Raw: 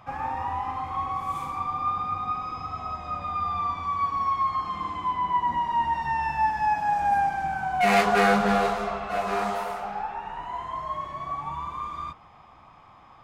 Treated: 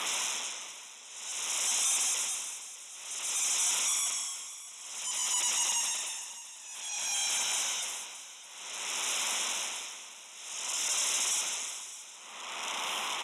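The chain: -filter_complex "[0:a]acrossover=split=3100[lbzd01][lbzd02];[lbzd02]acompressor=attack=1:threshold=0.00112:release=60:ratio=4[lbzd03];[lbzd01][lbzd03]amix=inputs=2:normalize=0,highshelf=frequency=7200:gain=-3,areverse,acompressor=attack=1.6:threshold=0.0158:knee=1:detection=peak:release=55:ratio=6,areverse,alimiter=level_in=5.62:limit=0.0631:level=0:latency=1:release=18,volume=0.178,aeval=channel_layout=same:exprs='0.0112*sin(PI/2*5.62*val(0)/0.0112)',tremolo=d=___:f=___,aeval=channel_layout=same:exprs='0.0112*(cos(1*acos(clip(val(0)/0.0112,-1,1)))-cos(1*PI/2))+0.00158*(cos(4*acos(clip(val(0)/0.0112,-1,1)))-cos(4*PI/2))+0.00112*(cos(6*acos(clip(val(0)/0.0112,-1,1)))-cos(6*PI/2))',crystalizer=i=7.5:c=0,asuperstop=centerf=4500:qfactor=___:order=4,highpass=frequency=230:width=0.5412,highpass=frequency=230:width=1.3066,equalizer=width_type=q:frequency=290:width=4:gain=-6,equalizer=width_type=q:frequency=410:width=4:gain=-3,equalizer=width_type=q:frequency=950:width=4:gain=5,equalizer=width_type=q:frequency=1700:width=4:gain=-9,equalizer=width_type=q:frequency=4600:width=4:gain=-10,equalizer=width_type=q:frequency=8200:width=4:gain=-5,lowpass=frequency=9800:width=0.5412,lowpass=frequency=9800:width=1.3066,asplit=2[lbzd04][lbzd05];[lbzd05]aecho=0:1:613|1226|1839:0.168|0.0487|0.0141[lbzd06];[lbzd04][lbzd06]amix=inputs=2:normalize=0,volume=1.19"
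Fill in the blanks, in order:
0.96, 0.54, 3.7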